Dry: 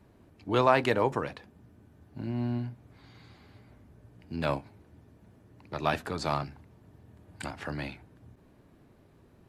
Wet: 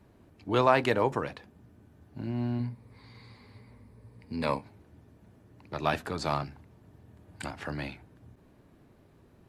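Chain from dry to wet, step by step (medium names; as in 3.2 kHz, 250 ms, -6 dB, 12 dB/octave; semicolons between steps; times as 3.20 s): 2.59–4.63 s: rippled EQ curve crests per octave 0.93, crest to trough 9 dB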